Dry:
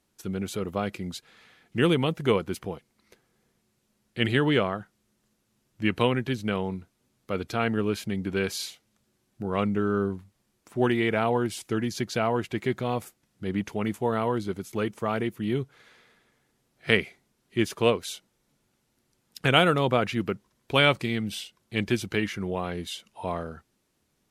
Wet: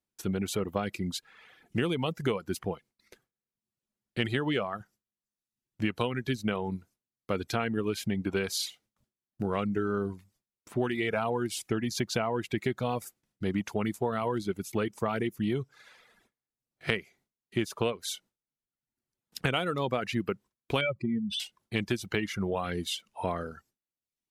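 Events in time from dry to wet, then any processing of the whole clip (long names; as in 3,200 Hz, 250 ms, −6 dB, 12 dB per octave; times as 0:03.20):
0:20.81–0:21.40: expanding power law on the bin magnitudes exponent 2.4
whole clip: noise gate with hold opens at −54 dBFS; reverb reduction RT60 0.75 s; downward compressor 10 to 1, threshold −28 dBFS; level +3 dB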